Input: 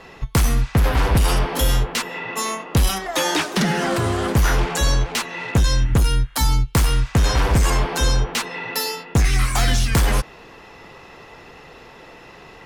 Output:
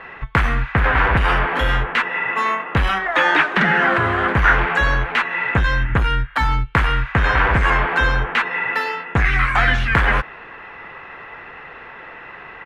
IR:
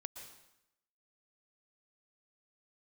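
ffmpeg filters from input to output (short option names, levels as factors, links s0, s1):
-af "firequalizer=gain_entry='entry(260,0);entry(1600,15);entry(5100,-15);entry(12000,-24)':delay=0.05:min_phase=1,volume=0.794"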